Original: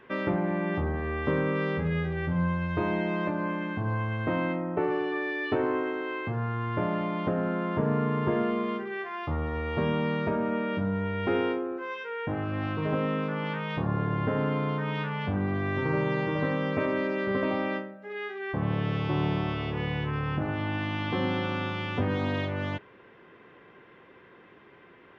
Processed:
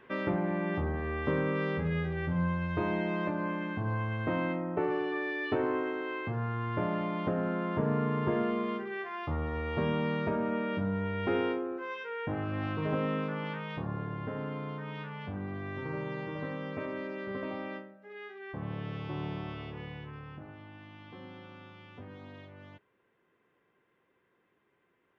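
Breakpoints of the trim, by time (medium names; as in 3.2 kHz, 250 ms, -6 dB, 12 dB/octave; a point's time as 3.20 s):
13.17 s -3 dB
14.19 s -9.5 dB
19.60 s -9.5 dB
20.70 s -19.5 dB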